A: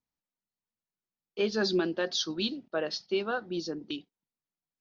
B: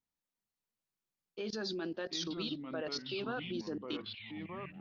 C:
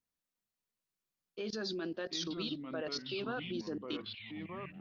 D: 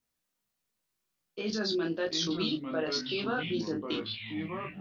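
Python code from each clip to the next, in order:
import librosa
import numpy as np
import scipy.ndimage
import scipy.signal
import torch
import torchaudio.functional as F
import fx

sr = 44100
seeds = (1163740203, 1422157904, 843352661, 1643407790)

y1 = fx.level_steps(x, sr, step_db=19)
y1 = fx.echo_pitch(y1, sr, ms=380, semitones=-4, count=3, db_per_echo=-6.0)
y2 = fx.notch(y1, sr, hz=850.0, q=12.0)
y3 = fx.room_early_taps(y2, sr, ms=(19, 36), db=(-4.0, -7.0))
y3 = y3 * librosa.db_to_amplitude(5.0)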